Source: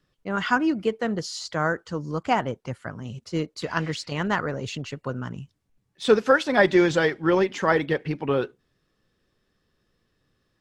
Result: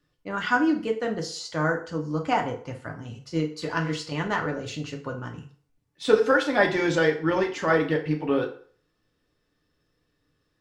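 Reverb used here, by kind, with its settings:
feedback delay network reverb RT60 0.48 s, low-frequency decay 0.75×, high-frequency decay 0.8×, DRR 1.5 dB
level −3.5 dB

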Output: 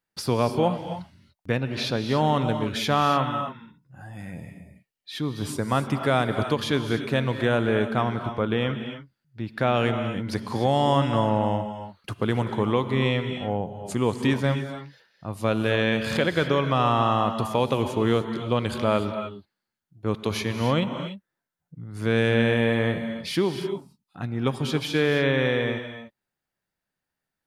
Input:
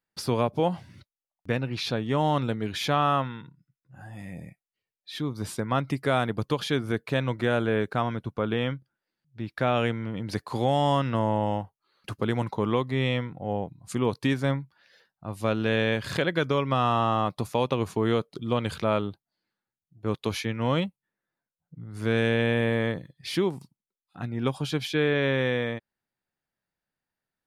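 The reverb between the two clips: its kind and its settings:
reverb whose tail is shaped and stops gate 320 ms rising, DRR 7.5 dB
level +2 dB

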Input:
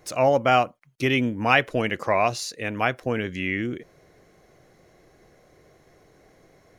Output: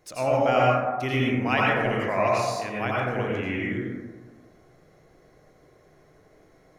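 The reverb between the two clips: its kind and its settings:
dense smooth reverb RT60 1.4 s, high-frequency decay 0.3×, pre-delay 75 ms, DRR −5 dB
level −7.5 dB

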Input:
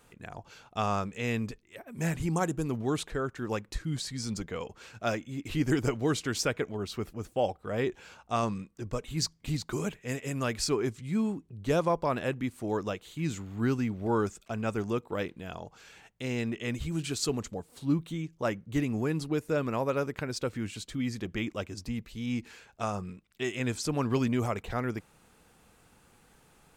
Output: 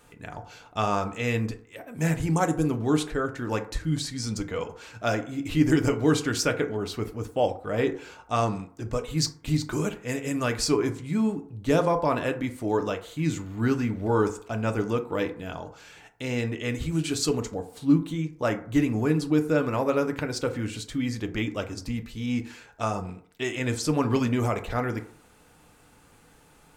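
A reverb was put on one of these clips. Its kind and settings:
feedback delay network reverb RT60 0.55 s, low-frequency decay 0.75×, high-frequency decay 0.4×, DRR 5.5 dB
level +3.5 dB

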